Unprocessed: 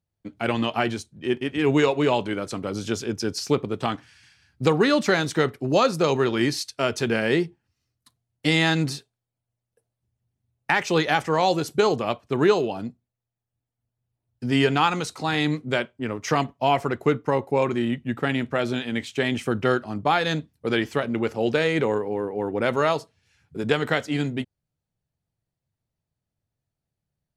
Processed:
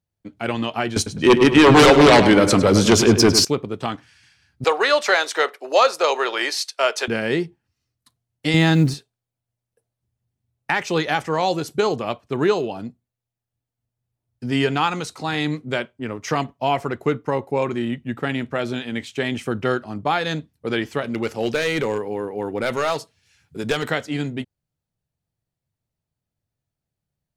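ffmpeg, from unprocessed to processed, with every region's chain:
-filter_complex "[0:a]asettb=1/sr,asplit=3[s0][s1][s2];[s0]atrim=end=0.964[s3];[s1]atrim=start=0.96:end=3.45,asetpts=PTS-STARTPTS,afade=t=in:d=0.004:c=qsin,afade=t=out:st=2.486:d=0.004:c=qsin,aeval=exprs='0.447*sin(PI/2*3.98*val(0)/0.447)':c=same,asplit=2[s4][s5];[s5]adelay=103,lowpass=f=3200:p=1,volume=0.355,asplit=2[s6][s7];[s7]adelay=103,lowpass=f=3200:p=1,volume=0.44,asplit=2[s8][s9];[s9]adelay=103,lowpass=f=3200:p=1,volume=0.44,asplit=2[s10][s11];[s11]adelay=103,lowpass=f=3200:p=1,volume=0.44,asplit=2[s12][s13];[s13]adelay=103,lowpass=f=3200:p=1,volume=0.44[s14];[s4][s6][s8][s10][s12][s14]amix=inputs=6:normalize=0,atrim=end_sample=109809[s15];[s2]atrim=start=3.446[s16];[s3][s15]acrossfade=d=0.004:c1=hsin:c2=qsin[s17];[s17][s16]acrossfade=d=0.004:c1=qsin:c2=hsin,asettb=1/sr,asplit=3[s18][s19][s20];[s18]atrim=end=4.644[s21];[s19]atrim=start=4.64:end=7.08,asetpts=PTS-STARTPTS,afade=t=in:d=0.004:c=qsin,afade=t=out:st=2.436:d=0.004:c=qsin,highpass=f=520:w=0.5412,highpass=f=520:w=1.3066,highshelf=f=7000:g=-4.5,acontrast=66[s22];[s20]atrim=start=7.076[s23];[s21][s22]acrossfade=d=0.004:c1=hsin:c2=qsin[s24];[s24][s23]acrossfade=d=0.004:c1=qsin:c2=hsin,asettb=1/sr,asplit=3[s25][s26][s27];[s25]atrim=end=8.544[s28];[s26]atrim=start=8.54:end=8.94,asetpts=PTS-STARTPTS,afade=t=in:d=0.004:c=qsin,afade=t=out:st=0.396:d=0.004:c=qsin,lowshelf=f=410:g=10,acrusher=bits=9:dc=4:mix=0:aa=0.000001[s29];[s27]atrim=start=8.936[s30];[s28][s29]acrossfade=d=0.004:c1=hsin:c2=qsin[s31];[s31][s30]acrossfade=d=0.004:c1=qsin:c2=hsin,asettb=1/sr,asplit=3[s32][s33][s34];[s32]atrim=end=21.044[s35];[s33]atrim=start=21.04:end=23.91,asetpts=PTS-STARTPTS,afade=t=in:d=0.004:c=qsin,afade=t=out:st=2.866:d=0.004:c=qsin,highshelf=f=2200:g=8,aeval=exprs='clip(val(0),-1,0.15)':c=same[s36];[s34]atrim=start=23.906[s37];[s35][s36]acrossfade=d=0.004:c1=hsin:c2=qsin[s38];[s38][s37]acrossfade=d=0.004:c1=qsin:c2=hsin"

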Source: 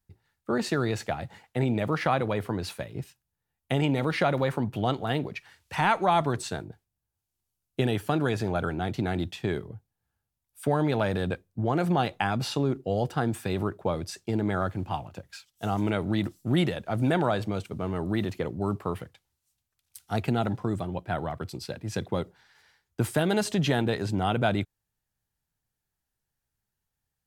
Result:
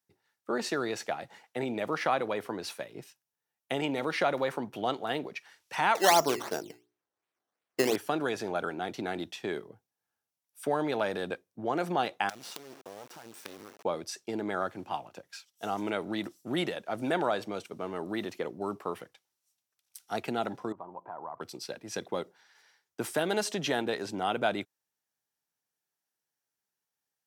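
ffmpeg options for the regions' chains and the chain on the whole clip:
-filter_complex "[0:a]asettb=1/sr,asplit=3[s0][s1][s2];[s0]atrim=end=5.954[s3];[s1]atrim=start=5.95:end=7.96,asetpts=PTS-STARTPTS,afade=t=in:d=0.004:c=qsin,afade=t=out:st=2.006:d=0.004:c=qsin,equalizer=f=410:t=o:w=1.8:g=6,bandreject=f=60:t=h:w=6,bandreject=f=120:t=h:w=6,bandreject=f=180:t=h:w=6,bandreject=f=240:t=h:w=6,bandreject=f=300:t=h:w=6,bandreject=f=360:t=h:w=6,bandreject=f=420:t=h:w=6,acrusher=samples=13:mix=1:aa=0.000001:lfo=1:lforange=13:lforate=2.8[s4];[s2]atrim=start=7.956[s5];[s3][s4]acrossfade=d=0.004:c1=hsin:c2=qsin[s6];[s6][s5]acrossfade=d=0.004:c1=qsin:c2=hsin,asettb=1/sr,asplit=3[s7][s8][s9];[s7]atrim=end=12.294[s10];[s8]atrim=start=12.29:end=13.85,asetpts=PTS-STARTPTS,afade=t=in:d=0.004:c=qsin,afade=t=out:st=1.556:d=0.004:c=qsin,lowshelf=f=120:g=2.5,acompressor=threshold=0.0224:ratio=10:attack=3.2:release=140:knee=1:detection=peak,acrusher=bits=5:dc=4:mix=0:aa=0.000001[s11];[s9]atrim=start=13.846[s12];[s10][s11]acrossfade=d=0.004:c1=hsin:c2=qsin[s13];[s13][s12]acrossfade=d=0.004:c1=qsin:c2=hsin,asettb=1/sr,asplit=3[s14][s15][s16];[s14]atrim=end=20.724[s17];[s15]atrim=start=20.72:end=21.41,asetpts=PTS-STARTPTS,afade=t=in:d=0.004:c=qsin,afade=t=out:st=0.686:d=0.004:c=qsin,acompressor=threshold=0.0112:ratio=8:attack=3.2:release=140:knee=1:detection=peak,lowpass=f=990:t=q:w=5.8[s18];[s16]atrim=start=21.406[s19];[s17][s18]acrossfade=d=0.004:c1=hsin:c2=qsin[s20];[s20][s19]acrossfade=d=0.004:c1=qsin:c2=hsin,highpass=310,equalizer=f=5700:w=7.1:g=6,volume=0.794"

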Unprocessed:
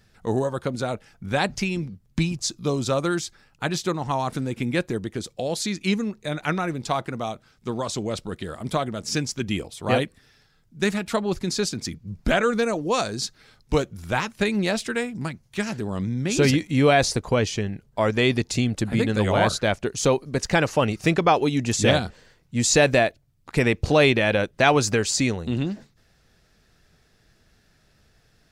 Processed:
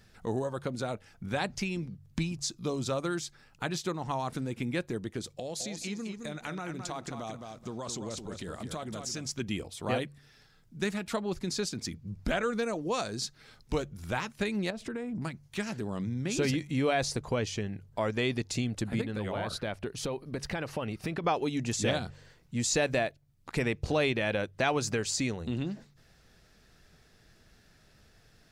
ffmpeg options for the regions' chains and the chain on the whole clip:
-filter_complex "[0:a]asettb=1/sr,asplit=3[s0][s1][s2];[s0]atrim=end=5.374[s3];[s1]atrim=start=5.37:end=9.26,asetpts=PTS-STARTPTS,afade=t=in:d=0.004:c=qsin,afade=t=out:st=3.886:d=0.004:c=qsin,acompressor=threshold=0.0251:ratio=2.5:attack=3.2:release=140:knee=1:detection=peak,equalizer=f=6700:w=2.3:g=5.5,aecho=1:1:215|430|645:0.447|0.0715|0.0114,atrim=end_sample=171549[s4];[s2]atrim=start=9.256[s5];[s3][s4]acrossfade=d=0.004:c1=hsin:c2=qsin[s6];[s6][s5]acrossfade=d=0.004:c1=qsin:c2=hsin,asettb=1/sr,asplit=3[s7][s8][s9];[s7]atrim=end=14.704[s10];[s8]atrim=start=14.7:end=15.22,asetpts=PTS-STARTPTS,afade=t=in:d=0.004:c=qsin,afade=t=out:st=0.516:d=0.004:c=qsin,tiltshelf=f=1400:g=7.5,acompressor=threshold=0.0501:ratio=16:attack=3.2:release=140:knee=1:detection=peak[s11];[s9]atrim=start=15.216[s12];[s10][s11]acrossfade=d=0.004:c1=hsin:c2=qsin[s13];[s13][s12]acrossfade=d=0.004:c1=qsin:c2=hsin,asettb=1/sr,asplit=3[s14][s15][s16];[s14]atrim=end=19.014[s17];[s15]atrim=start=19.01:end=21.24,asetpts=PTS-STARTPTS,afade=t=in:d=0.004:c=qsin,afade=t=out:st=2.226:d=0.004:c=qsin,equalizer=f=6800:t=o:w=0.64:g=-10.5,acompressor=threshold=0.0708:ratio=4:attack=3.2:release=140:knee=1:detection=peak[s18];[s16]atrim=start=21.236[s19];[s17][s18]acrossfade=d=0.004:c1=hsin:c2=qsin[s20];[s20][s19]acrossfade=d=0.004:c1=qsin:c2=hsin,bandreject=f=47.72:t=h:w=4,bandreject=f=95.44:t=h:w=4,bandreject=f=143.16:t=h:w=4,acompressor=threshold=0.00708:ratio=1.5"

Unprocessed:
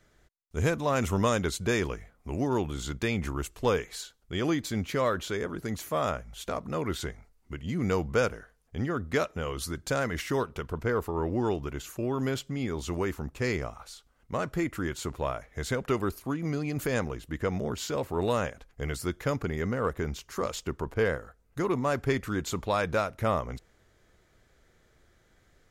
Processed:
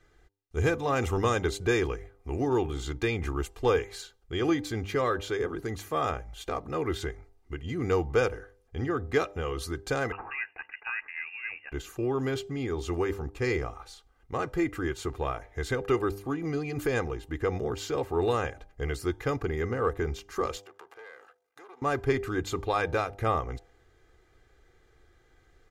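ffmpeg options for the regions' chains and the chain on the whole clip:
-filter_complex "[0:a]asettb=1/sr,asplit=3[s0][s1][s2];[s0]atrim=end=10.124[s3];[s1]atrim=start=10.12:end=11.72,asetpts=PTS-STARTPTS,afade=t=in:d=0.004:c=qsin,afade=t=out:st=1.596:d=0.004:c=qsin,aeval=exprs='if(lt(val(0),0),0.708*val(0),val(0))':c=same,highpass=580,lowpass=f=2600:t=q:w=0.5098,lowpass=f=2600:t=q:w=0.6013,lowpass=f=2600:t=q:w=0.9,lowpass=f=2600:t=q:w=2.563,afreqshift=-3000[s4];[s2]atrim=start=11.716[s5];[s3][s4]acrossfade=d=0.004:c1=hsin:c2=qsin[s6];[s6][s5]acrossfade=d=0.004:c1=qsin:c2=hsin,asettb=1/sr,asplit=3[s7][s8][s9];[s7]atrim=end=20.574[s10];[s8]atrim=start=20.57:end=21.82,asetpts=PTS-STARTPTS,afade=t=in:d=0.004:c=qsin,afade=t=out:st=1.246:d=0.004:c=qsin,aeval=exprs='if(lt(val(0),0),0.251*val(0),val(0))':c=same,acompressor=threshold=0.0126:ratio=16:attack=3.2:release=140:knee=1:detection=peak,highpass=640[s11];[s9]atrim=start=21.816[s12];[s10][s11]acrossfade=d=0.004:c1=hsin:c2=qsin[s13];[s13][s12]acrossfade=d=0.004:c1=qsin:c2=hsin,highshelf=f=5100:g=-8,aecho=1:1:2.5:0.61,bandreject=f=99.56:t=h:w=4,bandreject=f=199.12:t=h:w=4,bandreject=f=298.68:t=h:w=4,bandreject=f=398.24:t=h:w=4,bandreject=f=497.8:t=h:w=4,bandreject=f=597.36:t=h:w=4,bandreject=f=696.92:t=h:w=4,bandreject=f=796.48:t=h:w=4,bandreject=f=896.04:t=h:w=4,bandreject=f=995.6:t=h:w=4"

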